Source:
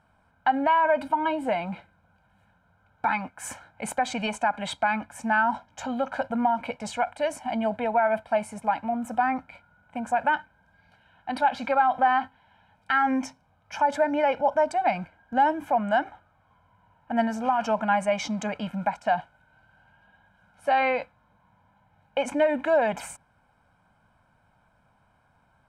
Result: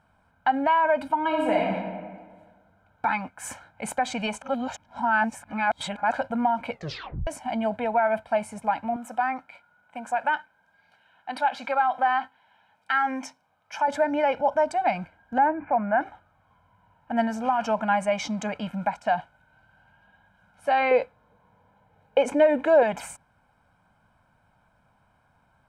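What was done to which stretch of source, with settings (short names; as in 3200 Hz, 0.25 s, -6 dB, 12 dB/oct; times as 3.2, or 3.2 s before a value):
1.26–1.7 reverb throw, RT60 1.6 s, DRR -1 dB
4.42–6.12 reverse
6.71 tape stop 0.56 s
8.96–13.88 HPF 530 Hz 6 dB/oct
15.38–16.01 steep low-pass 2500 Hz 72 dB/oct
20.91–22.83 bell 440 Hz +14.5 dB 0.52 oct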